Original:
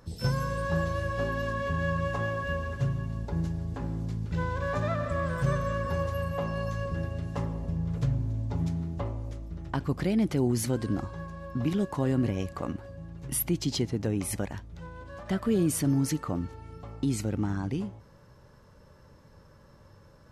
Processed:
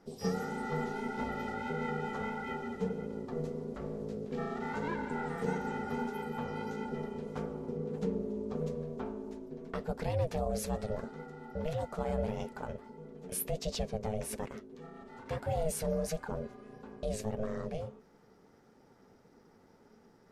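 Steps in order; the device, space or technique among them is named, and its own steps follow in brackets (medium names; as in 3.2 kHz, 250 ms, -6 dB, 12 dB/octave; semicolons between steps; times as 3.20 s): alien voice (ring modulator 320 Hz; flange 1.6 Hz, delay 3.1 ms, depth 8.8 ms, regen -43%)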